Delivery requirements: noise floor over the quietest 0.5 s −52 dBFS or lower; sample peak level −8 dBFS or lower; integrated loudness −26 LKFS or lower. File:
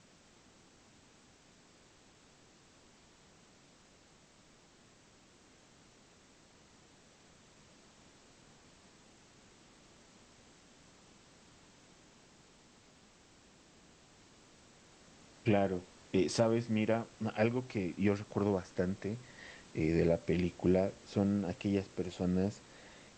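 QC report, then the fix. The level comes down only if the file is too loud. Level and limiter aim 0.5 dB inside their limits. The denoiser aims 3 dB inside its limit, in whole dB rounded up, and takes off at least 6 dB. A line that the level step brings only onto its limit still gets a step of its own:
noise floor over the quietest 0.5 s −63 dBFS: in spec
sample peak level −15.5 dBFS: in spec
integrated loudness −34.0 LKFS: in spec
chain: no processing needed

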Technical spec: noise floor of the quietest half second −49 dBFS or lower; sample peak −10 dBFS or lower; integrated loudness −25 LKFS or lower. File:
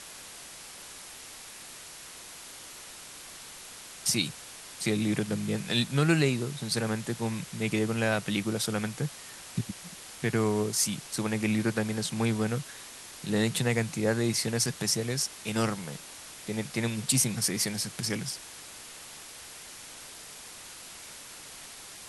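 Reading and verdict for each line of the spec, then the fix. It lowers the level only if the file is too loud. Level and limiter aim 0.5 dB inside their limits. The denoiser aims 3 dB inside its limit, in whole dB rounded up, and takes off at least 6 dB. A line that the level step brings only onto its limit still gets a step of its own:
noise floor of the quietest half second −46 dBFS: out of spec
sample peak −11.0 dBFS: in spec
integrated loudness −29.0 LKFS: in spec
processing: broadband denoise 6 dB, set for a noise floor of −46 dBFS

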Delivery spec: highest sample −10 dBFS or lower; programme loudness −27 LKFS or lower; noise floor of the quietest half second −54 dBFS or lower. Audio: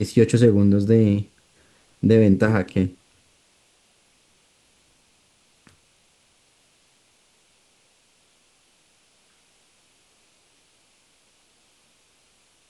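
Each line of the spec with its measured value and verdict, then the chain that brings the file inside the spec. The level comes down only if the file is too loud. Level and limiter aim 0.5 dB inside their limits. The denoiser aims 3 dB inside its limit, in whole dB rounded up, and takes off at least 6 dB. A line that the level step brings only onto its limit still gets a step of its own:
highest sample −5.0 dBFS: out of spec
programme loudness −18.5 LKFS: out of spec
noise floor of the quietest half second −61 dBFS: in spec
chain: level −9 dB

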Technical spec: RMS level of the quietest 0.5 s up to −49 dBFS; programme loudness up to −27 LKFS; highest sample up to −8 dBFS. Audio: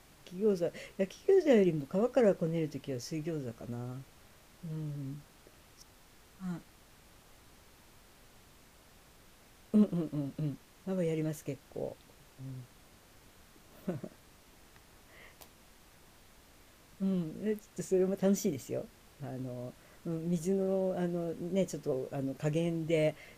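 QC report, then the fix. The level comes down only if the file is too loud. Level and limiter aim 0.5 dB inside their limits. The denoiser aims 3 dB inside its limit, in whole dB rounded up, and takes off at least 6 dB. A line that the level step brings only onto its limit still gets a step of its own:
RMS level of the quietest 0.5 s −60 dBFS: in spec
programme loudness −34.0 LKFS: in spec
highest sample −15.0 dBFS: in spec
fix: no processing needed

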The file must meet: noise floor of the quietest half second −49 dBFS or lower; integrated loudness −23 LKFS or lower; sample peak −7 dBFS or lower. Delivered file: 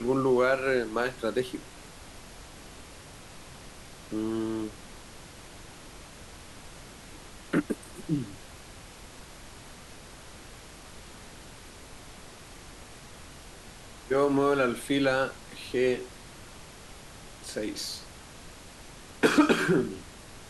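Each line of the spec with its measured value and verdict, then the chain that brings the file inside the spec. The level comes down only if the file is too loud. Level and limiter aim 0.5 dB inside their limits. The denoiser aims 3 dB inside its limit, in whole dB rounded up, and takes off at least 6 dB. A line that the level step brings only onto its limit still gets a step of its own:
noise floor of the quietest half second −47 dBFS: out of spec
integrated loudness −28.5 LKFS: in spec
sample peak −10.0 dBFS: in spec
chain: broadband denoise 6 dB, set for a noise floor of −47 dBFS

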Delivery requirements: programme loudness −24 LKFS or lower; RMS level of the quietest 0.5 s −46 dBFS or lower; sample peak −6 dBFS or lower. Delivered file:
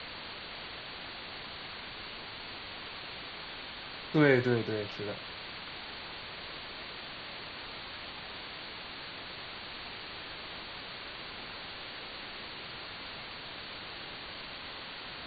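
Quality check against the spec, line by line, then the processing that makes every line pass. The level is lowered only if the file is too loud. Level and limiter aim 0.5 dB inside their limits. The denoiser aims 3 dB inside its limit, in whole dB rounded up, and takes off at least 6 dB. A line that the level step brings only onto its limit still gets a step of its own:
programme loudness −37.5 LKFS: in spec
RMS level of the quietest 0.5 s −44 dBFS: out of spec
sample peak −12.5 dBFS: in spec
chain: broadband denoise 6 dB, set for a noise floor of −44 dBFS

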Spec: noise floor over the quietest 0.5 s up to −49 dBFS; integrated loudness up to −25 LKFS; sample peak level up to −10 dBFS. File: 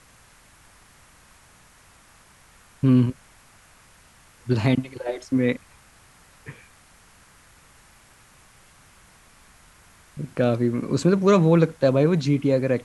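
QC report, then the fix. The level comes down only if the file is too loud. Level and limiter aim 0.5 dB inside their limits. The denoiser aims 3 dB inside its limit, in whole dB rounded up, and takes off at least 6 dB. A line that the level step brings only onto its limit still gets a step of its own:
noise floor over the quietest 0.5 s −54 dBFS: in spec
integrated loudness −21.5 LKFS: out of spec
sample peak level −6.0 dBFS: out of spec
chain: level −4 dB
brickwall limiter −10.5 dBFS

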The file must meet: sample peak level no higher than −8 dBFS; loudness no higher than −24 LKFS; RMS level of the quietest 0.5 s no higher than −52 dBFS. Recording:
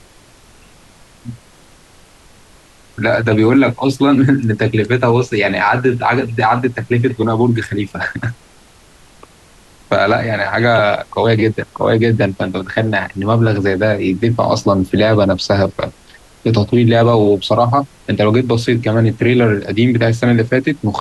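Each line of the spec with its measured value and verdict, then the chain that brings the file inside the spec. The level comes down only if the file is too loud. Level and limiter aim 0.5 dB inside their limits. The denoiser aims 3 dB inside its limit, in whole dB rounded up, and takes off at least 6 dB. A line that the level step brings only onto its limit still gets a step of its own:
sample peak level −3.0 dBFS: out of spec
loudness −14.5 LKFS: out of spec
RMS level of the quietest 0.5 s −45 dBFS: out of spec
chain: level −10 dB

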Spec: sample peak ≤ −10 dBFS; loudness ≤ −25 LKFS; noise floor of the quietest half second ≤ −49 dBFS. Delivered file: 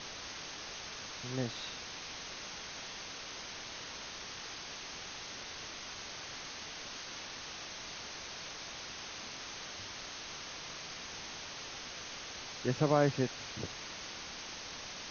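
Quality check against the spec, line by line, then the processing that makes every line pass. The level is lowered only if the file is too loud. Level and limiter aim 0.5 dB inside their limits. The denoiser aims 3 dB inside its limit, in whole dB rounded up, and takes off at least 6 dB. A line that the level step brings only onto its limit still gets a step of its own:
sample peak −14.0 dBFS: in spec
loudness −40.0 LKFS: in spec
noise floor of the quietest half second −45 dBFS: out of spec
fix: broadband denoise 7 dB, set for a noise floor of −45 dBFS

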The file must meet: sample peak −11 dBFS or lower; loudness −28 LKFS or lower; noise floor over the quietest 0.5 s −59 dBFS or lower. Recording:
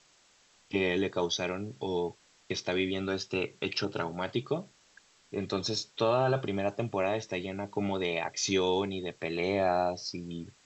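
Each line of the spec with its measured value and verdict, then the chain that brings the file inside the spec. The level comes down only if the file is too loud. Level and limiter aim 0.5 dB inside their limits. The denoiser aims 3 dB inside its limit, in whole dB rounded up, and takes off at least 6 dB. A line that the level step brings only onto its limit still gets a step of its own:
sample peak −15.5 dBFS: in spec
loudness −31.5 LKFS: in spec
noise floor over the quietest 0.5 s −64 dBFS: in spec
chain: no processing needed

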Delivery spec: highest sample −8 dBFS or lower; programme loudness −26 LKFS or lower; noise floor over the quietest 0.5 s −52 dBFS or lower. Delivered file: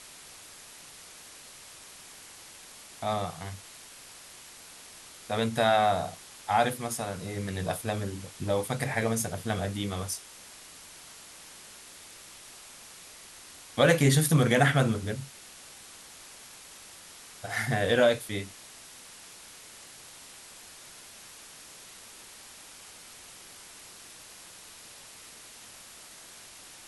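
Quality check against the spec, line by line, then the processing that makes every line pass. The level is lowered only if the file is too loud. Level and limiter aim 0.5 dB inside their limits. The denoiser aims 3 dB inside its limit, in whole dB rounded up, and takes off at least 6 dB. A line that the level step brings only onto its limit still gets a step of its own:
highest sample −9.0 dBFS: in spec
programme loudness −28.0 LKFS: in spec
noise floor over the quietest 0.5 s −49 dBFS: out of spec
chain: broadband denoise 6 dB, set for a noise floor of −49 dBFS

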